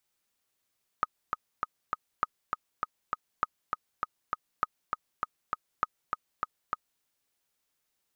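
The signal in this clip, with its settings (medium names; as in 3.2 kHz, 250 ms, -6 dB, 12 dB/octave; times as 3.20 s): metronome 200 bpm, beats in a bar 4, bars 5, 1.25 kHz, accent 4 dB -12.5 dBFS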